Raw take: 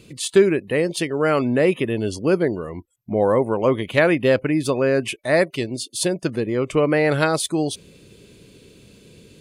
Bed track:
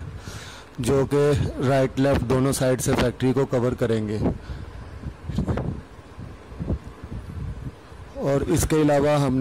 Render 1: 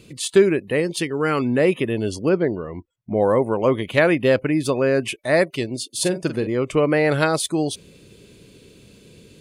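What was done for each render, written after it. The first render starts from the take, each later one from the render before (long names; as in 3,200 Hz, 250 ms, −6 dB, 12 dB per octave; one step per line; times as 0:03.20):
0:00.80–0:01.58: parametric band 620 Hz −10.5 dB 0.36 octaves
0:02.29–0:03.15: high-frequency loss of the air 180 metres
0:05.89–0:06.47: double-tracking delay 45 ms −10 dB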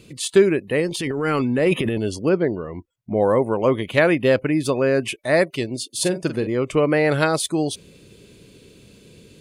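0:00.87–0:01.98: transient designer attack −7 dB, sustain +9 dB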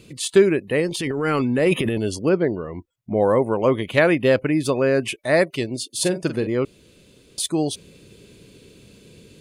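0:01.55–0:02.19: high-shelf EQ 6,700 Hz +5 dB
0:06.65–0:07.38: fill with room tone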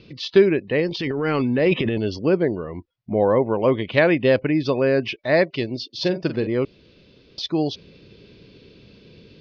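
Butterworth low-pass 5,500 Hz 72 dB per octave
dynamic equaliser 1,300 Hz, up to −5 dB, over −41 dBFS, Q 4.4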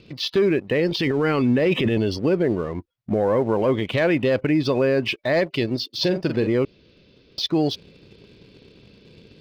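leveller curve on the samples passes 1
brickwall limiter −12.5 dBFS, peak gain reduction 9 dB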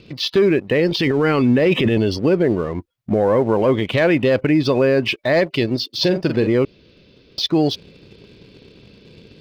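level +4 dB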